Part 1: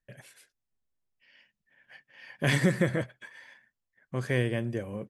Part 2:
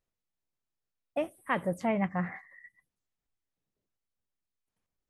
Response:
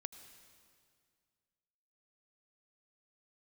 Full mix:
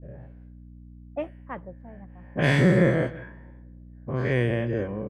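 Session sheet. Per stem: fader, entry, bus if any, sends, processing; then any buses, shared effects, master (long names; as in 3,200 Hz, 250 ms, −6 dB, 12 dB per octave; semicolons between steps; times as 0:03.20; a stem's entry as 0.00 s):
0.0 dB, 0.00 s, send −11.5 dB, echo send −16.5 dB, every bin's largest magnitude spread in time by 120 ms; low-pass filter 1,700 Hz 6 dB per octave; mains hum 60 Hz, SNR 18 dB
+0.5 dB, 0.00 s, no send, no echo send, high-shelf EQ 5,300 Hz +6 dB; automatic ducking −18 dB, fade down 0.50 s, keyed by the first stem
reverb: on, RT60 2.1 s, pre-delay 74 ms
echo: single-tap delay 162 ms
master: low-pass that shuts in the quiet parts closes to 550 Hz, open at −18.5 dBFS; level that may rise only so fast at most 590 dB per second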